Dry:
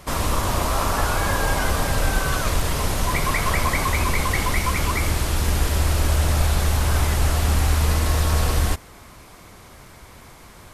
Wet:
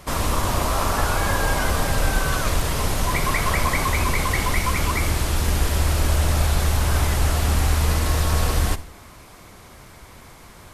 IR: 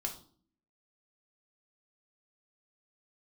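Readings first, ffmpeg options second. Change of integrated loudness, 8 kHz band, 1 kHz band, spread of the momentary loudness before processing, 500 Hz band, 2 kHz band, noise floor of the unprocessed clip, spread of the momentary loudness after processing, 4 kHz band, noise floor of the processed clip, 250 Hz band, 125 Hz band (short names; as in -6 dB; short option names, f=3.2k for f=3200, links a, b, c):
0.0 dB, 0.0 dB, 0.0 dB, 3 LU, 0.0 dB, 0.0 dB, -45 dBFS, 2 LU, 0.0 dB, -45 dBFS, 0.0 dB, -0.5 dB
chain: -filter_complex "[0:a]asplit=2[a][b];[1:a]atrim=start_sample=2205,adelay=59[c];[b][c]afir=irnorm=-1:irlink=0,volume=-18dB[d];[a][d]amix=inputs=2:normalize=0"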